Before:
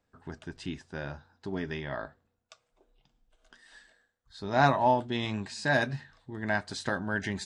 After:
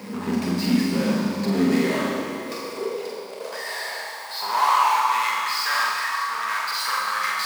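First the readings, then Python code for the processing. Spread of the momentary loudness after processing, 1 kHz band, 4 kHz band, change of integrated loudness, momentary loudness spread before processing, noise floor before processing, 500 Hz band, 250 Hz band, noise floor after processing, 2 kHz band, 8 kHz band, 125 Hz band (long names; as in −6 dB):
12 LU, +9.5 dB, +12.5 dB, +7.5 dB, 18 LU, −79 dBFS, +4.0 dB, +11.5 dB, −35 dBFS, +7.0 dB, +14.5 dB, +3.0 dB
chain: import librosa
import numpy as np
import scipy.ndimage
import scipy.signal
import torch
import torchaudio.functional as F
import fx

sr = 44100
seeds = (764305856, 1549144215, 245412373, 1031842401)

y = fx.ripple_eq(x, sr, per_octave=0.89, db=13)
y = fx.power_curve(y, sr, exponent=0.35)
y = 10.0 ** (-19.5 / 20.0) * np.tanh(y / 10.0 ** (-19.5 / 20.0))
y = fx.filter_sweep_highpass(y, sr, from_hz=220.0, to_hz=1200.0, start_s=1.44, end_s=5.0, q=5.8)
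y = fx.doubler(y, sr, ms=45.0, db=-4.0)
y = fx.rev_schroeder(y, sr, rt60_s=2.5, comb_ms=30, drr_db=-0.5)
y = F.gain(torch.from_numpy(y), -7.0).numpy()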